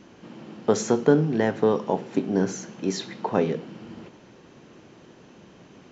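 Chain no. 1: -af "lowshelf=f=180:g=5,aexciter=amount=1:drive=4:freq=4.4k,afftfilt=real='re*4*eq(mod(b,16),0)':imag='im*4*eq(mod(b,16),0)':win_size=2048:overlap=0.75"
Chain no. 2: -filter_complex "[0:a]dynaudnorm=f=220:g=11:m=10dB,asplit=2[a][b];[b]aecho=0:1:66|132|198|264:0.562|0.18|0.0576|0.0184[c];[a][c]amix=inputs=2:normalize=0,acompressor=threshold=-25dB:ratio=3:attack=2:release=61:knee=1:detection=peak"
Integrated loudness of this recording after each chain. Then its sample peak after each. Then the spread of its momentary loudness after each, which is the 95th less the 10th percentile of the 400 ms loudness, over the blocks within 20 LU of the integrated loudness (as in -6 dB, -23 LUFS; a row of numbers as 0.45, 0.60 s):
-30.5, -28.5 LUFS; -12.5, -15.0 dBFS; 19, 18 LU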